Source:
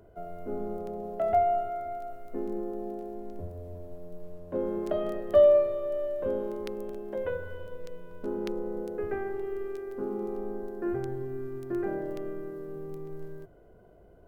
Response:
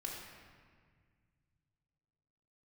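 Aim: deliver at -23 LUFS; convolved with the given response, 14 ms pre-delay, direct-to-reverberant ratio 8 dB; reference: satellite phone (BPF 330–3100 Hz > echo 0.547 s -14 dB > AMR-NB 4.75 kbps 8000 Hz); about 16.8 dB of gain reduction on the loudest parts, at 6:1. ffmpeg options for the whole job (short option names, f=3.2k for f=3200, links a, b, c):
-filter_complex "[0:a]acompressor=threshold=-34dB:ratio=6,asplit=2[a][b];[1:a]atrim=start_sample=2205,adelay=14[c];[b][c]afir=irnorm=-1:irlink=0,volume=-8dB[d];[a][d]amix=inputs=2:normalize=0,highpass=330,lowpass=3.1k,aecho=1:1:547:0.2,volume=17.5dB" -ar 8000 -c:a libopencore_amrnb -b:a 4750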